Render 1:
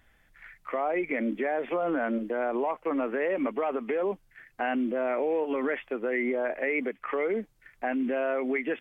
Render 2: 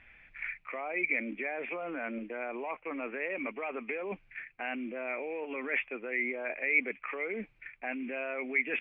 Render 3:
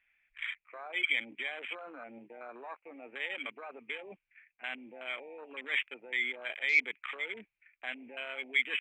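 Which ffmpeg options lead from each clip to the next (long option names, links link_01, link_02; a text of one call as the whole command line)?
ffmpeg -i in.wav -af "areverse,acompressor=threshold=-37dB:ratio=5,areverse,lowpass=frequency=2400:width_type=q:width=9.6" out.wav
ffmpeg -i in.wav -af "afwtdn=0.0141,tiltshelf=frequency=920:gain=-9,volume=-5dB" out.wav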